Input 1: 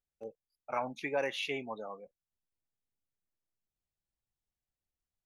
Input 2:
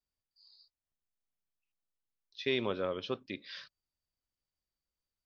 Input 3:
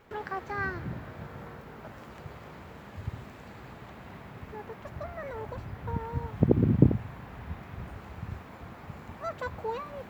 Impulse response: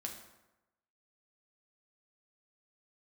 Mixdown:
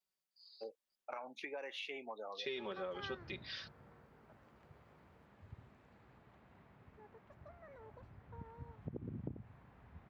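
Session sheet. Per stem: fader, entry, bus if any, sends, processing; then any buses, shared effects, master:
+1.0 dB, 0.40 s, no send, three-band isolator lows -23 dB, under 270 Hz, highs -12 dB, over 5400 Hz; compressor 3:1, threshold -43 dBFS, peak gain reduction 11.5 dB
-1.5 dB, 0.00 s, no send, HPF 310 Hz 6 dB/oct; comb 5.3 ms, depth 84%
3.12 s -9 dB -> 3.56 s -18 dB, 2.45 s, no send, high shelf 5400 Hz -10.5 dB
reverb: off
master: compressor 4:1, threshold -41 dBFS, peak gain reduction 12.5 dB

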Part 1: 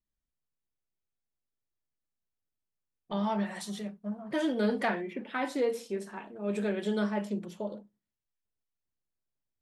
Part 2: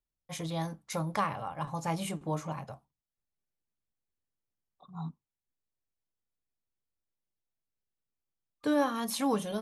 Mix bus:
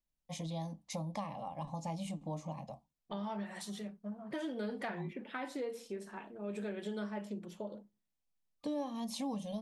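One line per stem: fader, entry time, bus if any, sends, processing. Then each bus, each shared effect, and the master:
-4.0 dB, 0.00 s, no send, dry
-1.0 dB, 0.00 s, no send, LPF 7300 Hz 12 dB/oct; low shelf 340 Hz +5 dB; fixed phaser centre 390 Hz, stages 6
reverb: off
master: compressor 2.5:1, threshold -39 dBFS, peak gain reduction 10.5 dB

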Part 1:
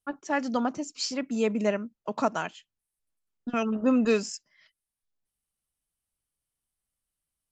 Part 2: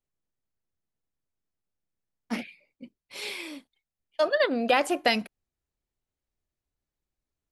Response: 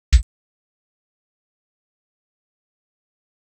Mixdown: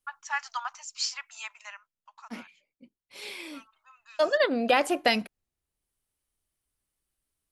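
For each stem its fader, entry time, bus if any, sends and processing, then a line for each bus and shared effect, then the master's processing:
+1.5 dB, 0.00 s, no send, steep high-pass 900 Hz 48 dB/oct; auto duck -20 dB, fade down 0.95 s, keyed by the second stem
0.85 s -0.5 dB -> 1.48 s -9 dB -> 2.93 s -9 dB -> 3.64 s 0 dB, 0.00 s, no send, dry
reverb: off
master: dry

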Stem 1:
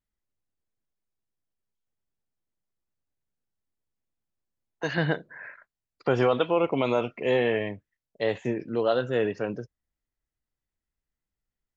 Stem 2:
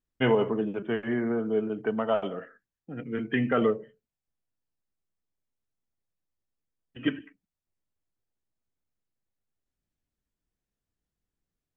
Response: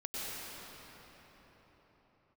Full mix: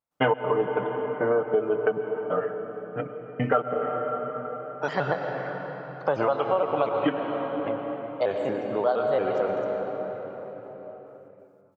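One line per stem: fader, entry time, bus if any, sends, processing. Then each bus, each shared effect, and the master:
-7.0 dB, 0.00 s, muted 6.89–7.66, send -4.5 dB, shaped vibrato square 4.3 Hz, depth 160 cents
+1.5 dB, 0.00 s, send -10.5 dB, step gate ".xx.xx.x.." 137 bpm -60 dB; comb 6.7 ms, depth 73%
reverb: on, pre-delay 90 ms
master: HPF 96 Hz; band shelf 830 Hz +11.5 dB; compressor 5:1, threshold -20 dBFS, peak gain reduction 13 dB

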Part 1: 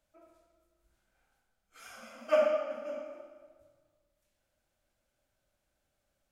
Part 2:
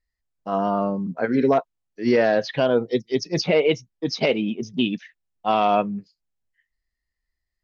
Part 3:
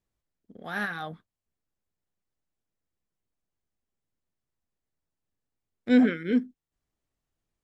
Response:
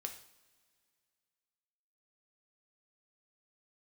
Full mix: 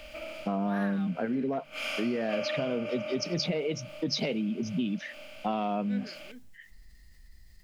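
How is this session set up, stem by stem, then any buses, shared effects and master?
+2.5 dB, 0.00 s, bus A, no send, per-bin compression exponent 0.4; band shelf 3200 Hz +11.5 dB 1.3 oct
-5.0 dB, 0.00 s, bus A, no send, bell 200 Hz +9.5 dB 1.1 oct; fast leveller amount 50%
-2.0 dB, 0.00 s, no bus, no send, low shelf 460 Hz -9.5 dB; auto duck -13 dB, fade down 1.90 s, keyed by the second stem
bus A: 0.0 dB, bell 1100 Hz -3 dB 0.49 oct; compressor 6:1, threshold -28 dBFS, peak gain reduction 14.5 dB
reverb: off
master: de-hum 73.76 Hz, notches 2; three-band expander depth 40%

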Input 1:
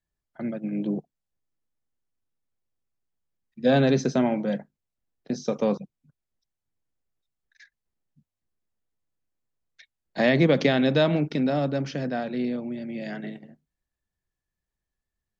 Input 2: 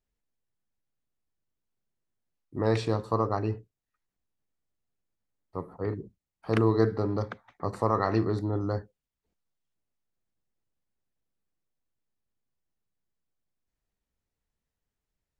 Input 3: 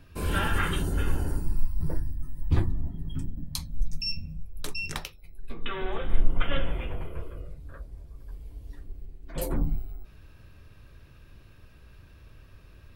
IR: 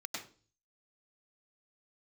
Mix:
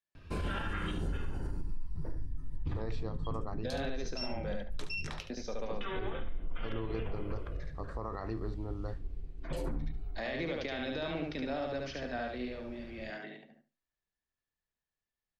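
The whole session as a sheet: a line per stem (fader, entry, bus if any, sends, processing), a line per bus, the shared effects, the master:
-5.0 dB, 0.00 s, bus A, no send, echo send -3 dB, HPF 670 Hz 6 dB/oct; limiter -22.5 dBFS, peak gain reduction 11 dB
-11.5 dB, 0.15 s, no bus, no send, no echo send, dry
0.0 dB, 0.15 s, bus A, no send, echo send -16 dB, dry
bus A: 0.0 dB, compressor 5:1, threshold -30 dBFS, peak gain reduction 18 dB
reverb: off
echo: feedback echo 72 ms, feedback 18%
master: LPF 5500 Hz 12 dB/oct; limiter -26.5 dBFS, peak gain reduction 7.5 dB

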